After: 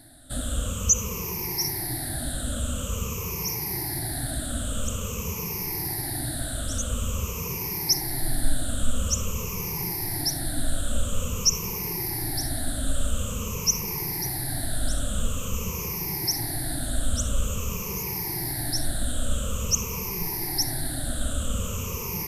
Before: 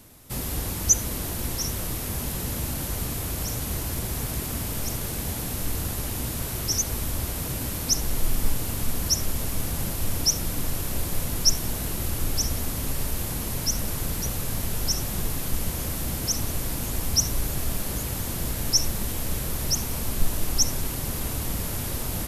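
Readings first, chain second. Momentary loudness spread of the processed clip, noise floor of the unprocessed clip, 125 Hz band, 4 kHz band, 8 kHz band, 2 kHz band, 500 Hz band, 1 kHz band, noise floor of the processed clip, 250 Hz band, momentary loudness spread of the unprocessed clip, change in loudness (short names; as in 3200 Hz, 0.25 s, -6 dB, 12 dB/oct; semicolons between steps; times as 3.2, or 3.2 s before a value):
7 LU, -31 dBFS, -1.0 dB, -1.5 dB, -1.0 dB, 0.0 dB, 0.0 dB, 0.0 dB, -32 dBFS, -0.5 dB, 6 LU, -0.5 dB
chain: moving spectral ripple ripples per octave 0.79, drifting -0.48 Hz, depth 22 dB; maximiser +3.5 dB; gain -8.5 dB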